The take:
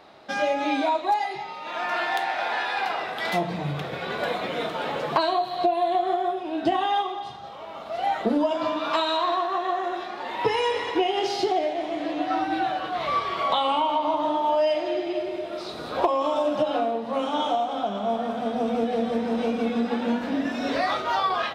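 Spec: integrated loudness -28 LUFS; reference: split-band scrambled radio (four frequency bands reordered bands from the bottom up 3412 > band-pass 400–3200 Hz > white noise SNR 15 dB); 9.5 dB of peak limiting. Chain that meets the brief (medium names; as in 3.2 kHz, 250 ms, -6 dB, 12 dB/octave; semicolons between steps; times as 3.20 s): peak limiter -20.5 dBFS; four frequency bands reordered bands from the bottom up 3412; band-pass 400–3200 Hz; white noise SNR 15 dB; trim +2 dB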